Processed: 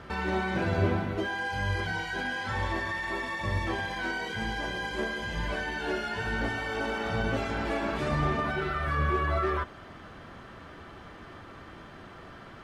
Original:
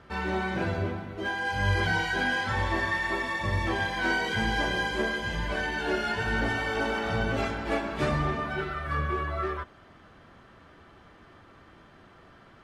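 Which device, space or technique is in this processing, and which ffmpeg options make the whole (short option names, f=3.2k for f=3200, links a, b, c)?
de-esser from a sidechain: -filter_complex "[0:a]asplit=2[a][b];[b]highpass=4.7k,apad=whole_len=557010[c];[a][c]sidechaincompress=threshold=-56dB:ratio=4:attack=1.8:release=32,volume=7dB"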